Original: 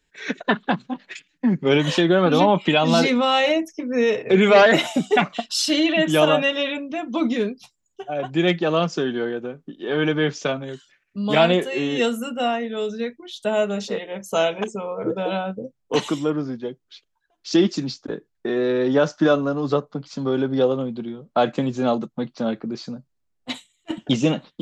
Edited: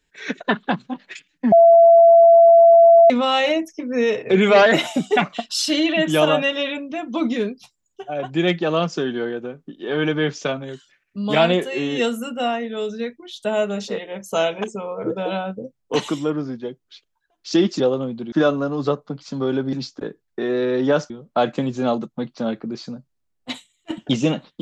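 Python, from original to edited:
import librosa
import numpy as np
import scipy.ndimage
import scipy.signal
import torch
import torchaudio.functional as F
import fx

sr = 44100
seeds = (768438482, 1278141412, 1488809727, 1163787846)

y = fx.edit(x, sr, fx.bleep(start_s=1.52, length_s=1.58, hz=673.0, db=-6.5),
    fx.swap(start_s=17.8, length_s=1.37, other_s=20.58, other_length_s=0.52), tone=tone)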